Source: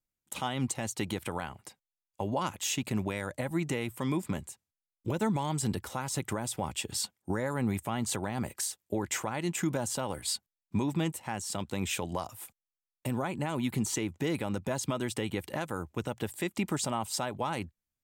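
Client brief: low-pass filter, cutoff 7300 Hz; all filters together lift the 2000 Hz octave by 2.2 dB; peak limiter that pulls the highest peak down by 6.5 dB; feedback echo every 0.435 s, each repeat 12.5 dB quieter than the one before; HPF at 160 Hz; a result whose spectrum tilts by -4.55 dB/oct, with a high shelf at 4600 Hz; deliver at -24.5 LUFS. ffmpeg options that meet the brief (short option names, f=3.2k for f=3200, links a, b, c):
-af "highpass=160,lowpass=7.3k,equalizer=f=2k:t=o:g=4,highshelf=f=4.6k:g=-6.5,alimiter=limit=-23dB:level=0:latency=1,aecho=1:1:435|870|1305:0.237|0.0569|0.0137,volume=11.5dB"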